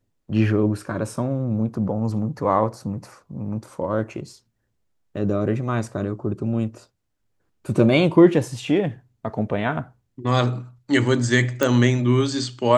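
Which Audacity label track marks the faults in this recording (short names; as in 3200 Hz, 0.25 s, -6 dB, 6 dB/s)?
11.630000	11.630000	pop -6 dBFS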